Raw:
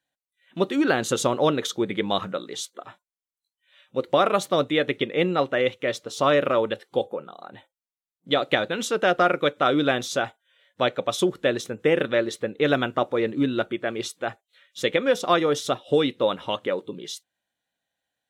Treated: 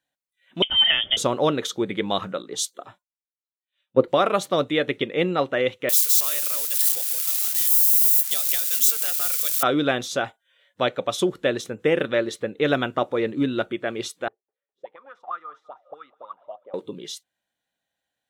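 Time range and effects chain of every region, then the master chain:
0:00.62–0:01.17: low-shelf EQ 240 Hz +8.5 dB + notch comb filter 590 Hz + voice inversion scrambler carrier 3,400 Hz
0:02.42–0:04.08: dynamic equaliser 2,200 Hz, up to −6 dB, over −48 dBFS, Q 0.93 + multiband upward and downward expander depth 100%
0:05.89–0:09.63: spike at every zero crossing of −13.5 dBFS + first-order pre-emphasis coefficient 0.97 + multiband upward and downward compressor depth 40%
0:14.28–0:16.74: envelope filter 370–1,300 Hz, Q 16, up, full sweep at −16.5 dBFS + feedback echo with a high-pass in the loop 204 ms, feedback 56%, high-pass 780 Hz, level −20 dB
whole clip: no processing

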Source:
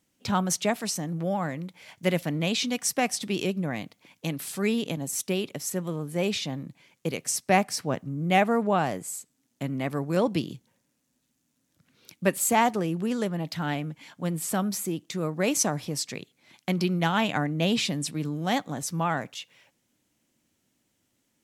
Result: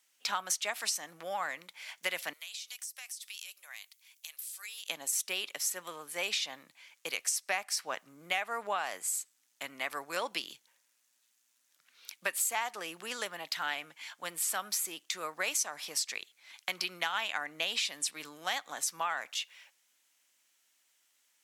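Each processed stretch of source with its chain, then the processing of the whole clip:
0:02.33–0:04.89: high-pass filter 450 Hz 24 dB per octave + first difference + downward compressor 16 to 1, threshold −42 dBFS
whole clip: high-pass filter 1,200 Hz 12 dB per octave; downward compressor 6 to 1, threshold −33 dBFS; level +4 dB

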